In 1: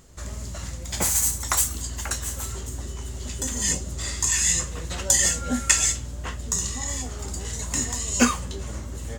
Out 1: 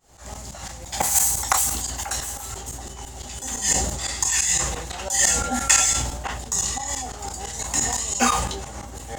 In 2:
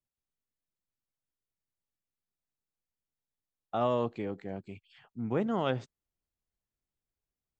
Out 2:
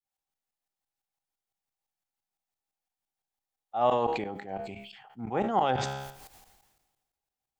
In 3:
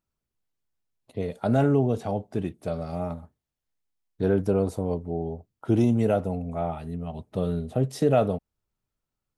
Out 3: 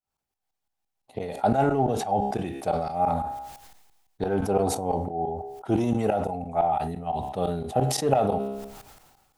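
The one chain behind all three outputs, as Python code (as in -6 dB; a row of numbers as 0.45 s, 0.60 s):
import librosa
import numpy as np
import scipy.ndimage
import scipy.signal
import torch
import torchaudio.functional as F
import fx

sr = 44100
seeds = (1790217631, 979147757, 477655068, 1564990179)

p1 = np.clip(x, -10.0 ** (-18.0 / 20.0), 10.0 ** (-18.0 / 20.0))
p2 = x + F.gain(torch.from_numpy(p1), -9.0).numpy()
p3 = fx.low_shelf(p2, sr, hz=360.0, db=-8.0)
p4 = fx.tremolo_shape(p3, sr, shape='saw_up', hz=5.9, depth_pct=95)
p5 = fx.peak_eq(p4, sr, hz=790.0, db=15.0, octaves=0.28)
p6 = fx.comb_fb(p5, sr, f0_hz=68.0, decay_s=0.51, harmonics='all', damping=0.0, mix_pct=40)
p7 = fx.sustainer(p6, sr, db_per_s=44.0)
y = F.gain(torch.from_numpy(p7), 6.0).numpy()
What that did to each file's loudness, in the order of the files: +2.5 LU, +3.5 LU, 0.0 LU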